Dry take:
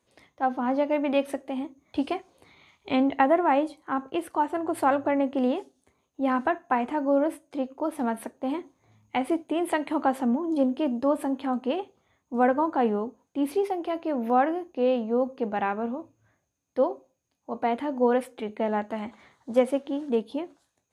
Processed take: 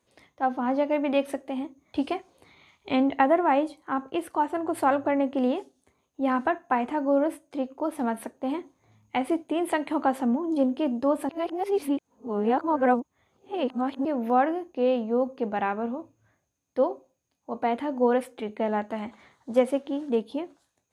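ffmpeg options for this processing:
-filter_complex "[0:a]asplit=3[a][b][c];[a]atrim=end=11.292[d];[b]atrim=start=11.288:end=14.052,asetpts=PTS-STARTPTS,areverse[e];[c]atrim=start=14.048[f];[d][e]acrossfade=d=0.004:c1=hsin:c2=hsin[g];[g][f]acrossfade=d=0.004:c1=hsin:c2=hsin"

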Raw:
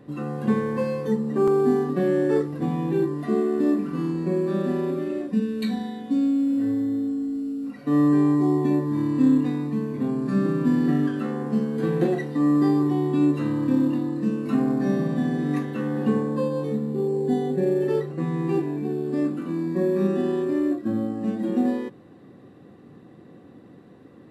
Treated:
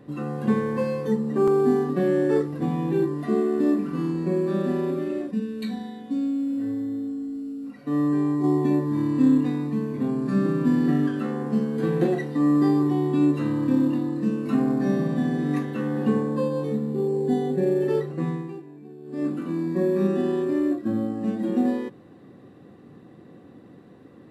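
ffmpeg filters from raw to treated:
-filter_complex "[0:a]asplit=5[a][b][c][d][e];[a]atrim=end=5.312[f];[b]atrim=start=5.308:end=8.442,asetpts=PTS-STARTPTS,volume=-4dB[g];[c]atrim=start=8.438:end=18.62,asetpts=PTS-STARTPTS,afade=t=out:st=9.852:d=0.33:c=qua:silence=0.158489[h];[d]atrim=start=18.62:end=18.96,asetpts=PTS-STARTPTS,volume=-16dB[i];[e]atrim=start=18.96,asetpts=PTS-STARTPTS,afade=t=in:d=0.33:c=qua:silence=0.158489[j];[f][g]acrossfade=d=0.004:c1=hsin:c2=hsin[k];[h][i][j]concat=n=3:v=0:a=1[l];[k][l]acrossfade=d=0.004:c1=hsin:c2=hsin"

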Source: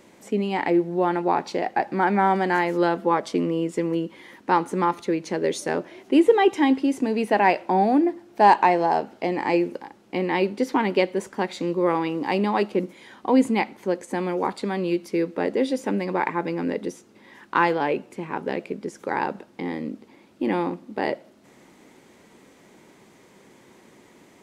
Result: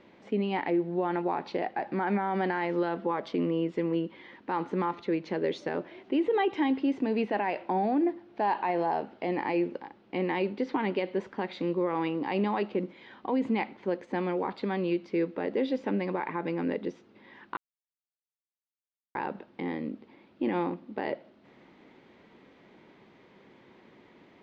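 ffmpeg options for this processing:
-filter_complex "[0:a]asplit=3[a][b][c];[a]atrim=end=17.57,asetpts=PTS-STARTPTS,afade=t=out:st=17.566:d=0.004:c=hsin[d];[b]atrim=start=17.57:end=19.15,asetpts=PTS-STARTPTS,volume=0[e];[c]atrim=start=19.15,asetpts=PTS-STARTPTS,afade=t=in:d=0.004:c=hsin[f];[d][e][f]concat=n=3:v=0:a=1,lowpass=f=4k:w=0.5412,lowpass=f=4k:w=1.3066,alimiter=limit=-15.5dB:level=0:latency=1:release=39,volume=-4dB"

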